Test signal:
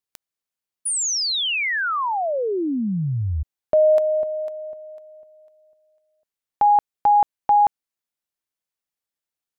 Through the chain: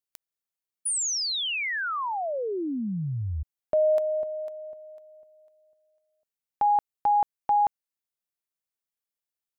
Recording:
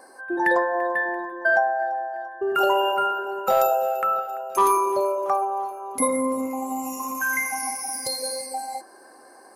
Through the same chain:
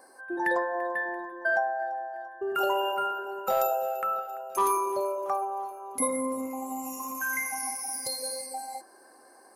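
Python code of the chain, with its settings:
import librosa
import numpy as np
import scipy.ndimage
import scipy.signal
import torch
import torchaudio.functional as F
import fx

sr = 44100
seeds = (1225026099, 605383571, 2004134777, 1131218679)

y = fx.high_shelf(x, sr, hz=9000.0, db=5.5)
y = F.gain(torch.from_numpy(y), -6.5).numpy()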